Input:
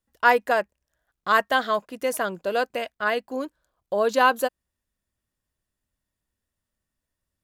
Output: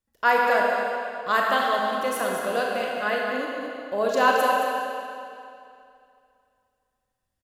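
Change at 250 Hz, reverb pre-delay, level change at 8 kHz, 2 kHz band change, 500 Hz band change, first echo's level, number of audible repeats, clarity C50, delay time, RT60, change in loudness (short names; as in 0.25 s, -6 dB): +0.5 dB, 33 ms, +0.5 dB, +0.5 dB, +0.5 dB, -7.5 dB, 1, -1.5 dB, 0.22 s, 2.5 s, 0.0 dB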